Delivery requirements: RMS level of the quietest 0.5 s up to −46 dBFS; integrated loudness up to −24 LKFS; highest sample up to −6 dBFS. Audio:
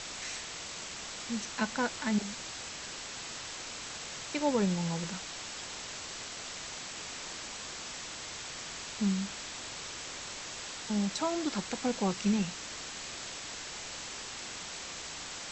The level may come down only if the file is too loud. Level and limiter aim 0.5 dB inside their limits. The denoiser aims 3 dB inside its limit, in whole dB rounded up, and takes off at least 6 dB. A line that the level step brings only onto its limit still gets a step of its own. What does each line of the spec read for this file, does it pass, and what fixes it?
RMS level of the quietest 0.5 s −42 dBFS: out of spec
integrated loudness −36.0 LKFS: in spec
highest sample −15.5 dBFS: in spec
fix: broadband denoise 7 dB, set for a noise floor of −42 dBFS

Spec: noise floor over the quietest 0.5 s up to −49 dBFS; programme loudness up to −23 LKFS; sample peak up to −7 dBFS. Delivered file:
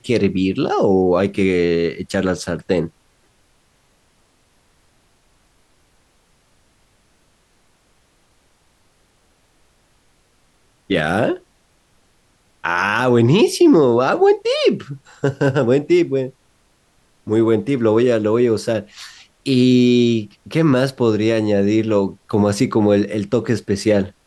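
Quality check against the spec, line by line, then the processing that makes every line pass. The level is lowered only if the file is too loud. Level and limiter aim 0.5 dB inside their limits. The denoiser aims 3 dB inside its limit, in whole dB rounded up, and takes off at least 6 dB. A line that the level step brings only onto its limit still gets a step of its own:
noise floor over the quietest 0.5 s −59 dBFS: in spec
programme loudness −17.0 LKFS: out of spec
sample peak −4.5 dBFS: out of spec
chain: level −6.5 dB

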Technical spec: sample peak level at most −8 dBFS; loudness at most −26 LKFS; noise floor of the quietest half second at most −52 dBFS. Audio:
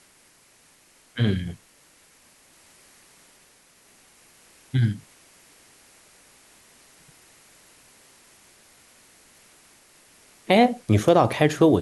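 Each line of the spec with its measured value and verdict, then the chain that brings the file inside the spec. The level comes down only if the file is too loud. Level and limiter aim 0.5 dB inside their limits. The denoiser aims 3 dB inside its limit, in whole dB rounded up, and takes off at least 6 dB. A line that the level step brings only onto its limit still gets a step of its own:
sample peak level −5.0 dBFS: out of spec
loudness −21.5 LKFS: out of spec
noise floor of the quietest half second −57 dBFS: in spec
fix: level −5 dB

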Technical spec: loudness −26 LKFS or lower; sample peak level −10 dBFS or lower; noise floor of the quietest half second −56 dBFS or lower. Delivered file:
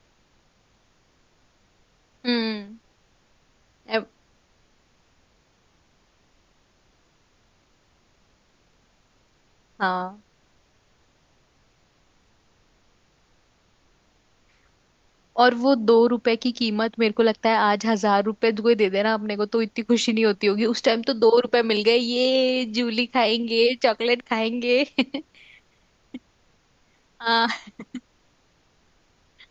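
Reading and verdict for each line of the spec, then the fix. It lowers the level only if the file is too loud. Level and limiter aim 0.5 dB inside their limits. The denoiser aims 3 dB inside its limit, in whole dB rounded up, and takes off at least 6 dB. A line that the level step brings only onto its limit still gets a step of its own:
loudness −21.5 LKFS: out of spec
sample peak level −4.5 dBFS: out of spec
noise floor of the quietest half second −63 dBFS: in spec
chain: level −5 dB
brickwall limiter −10.5 dBFS

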